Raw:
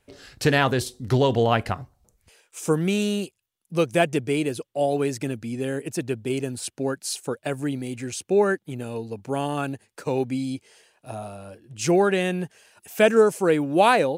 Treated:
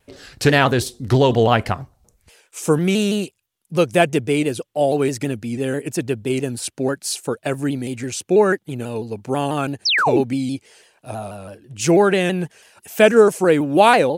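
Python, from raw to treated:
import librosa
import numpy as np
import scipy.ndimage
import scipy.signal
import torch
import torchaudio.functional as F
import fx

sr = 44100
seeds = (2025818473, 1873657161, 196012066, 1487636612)

y = fx.spec_paint(x, sr, seeds[0], shape='fall', start_s=9.85, length_s=0.36, low_hz=220.0, high_hz=5800.0, level_db=-22.0)
y = fx.vibrato_shape(y, sr, shape='saw_down', rate_hz=6.1, depth_cents=100.0)
y = F.gain(torch.from_numpy(y), 5.0).numpy()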